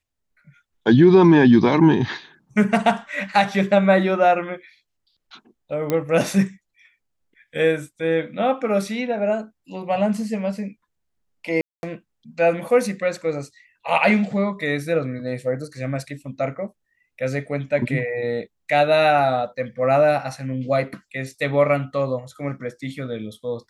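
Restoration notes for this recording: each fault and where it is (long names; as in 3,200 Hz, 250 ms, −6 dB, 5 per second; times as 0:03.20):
0:05.90: click −9 dBFS
0:11.61–0:11.83: drop-out 221 ms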